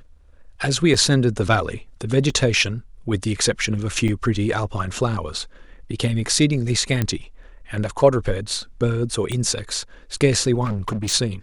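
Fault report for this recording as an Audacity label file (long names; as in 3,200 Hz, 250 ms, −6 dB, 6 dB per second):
0.940000	0.940000	drop-out 3.5 ms
2.300000	2.300000	drop-out 2.1 ms
4.080000	4.090000	drop-out 5.9 ms
7.020000	7.020000	click −8 dBFS
9.320000	9.320000	click −14 dBFS
10.640000	11.140000	clipping −20.5 dBFS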